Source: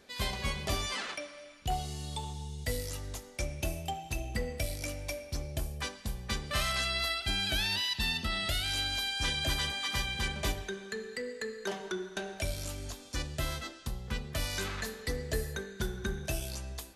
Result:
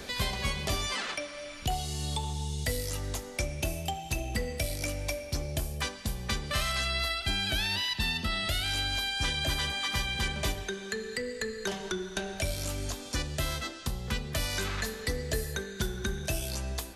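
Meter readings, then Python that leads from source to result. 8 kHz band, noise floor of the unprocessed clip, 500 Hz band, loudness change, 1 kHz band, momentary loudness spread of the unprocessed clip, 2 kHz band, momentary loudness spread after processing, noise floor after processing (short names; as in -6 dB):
+3.5 dB, -50 dBFS, +2.5 dB, +2.5 dB, +2.0 dB, 10 LU, +2.5 dB, 7 LU, -43 dBFS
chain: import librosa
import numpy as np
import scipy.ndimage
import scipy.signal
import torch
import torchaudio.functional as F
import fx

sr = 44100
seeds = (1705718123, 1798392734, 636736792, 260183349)

y = fx.band_squash(x, sr, depth_pct=70)
y = y * librosa.db_to_amplitude(2.0)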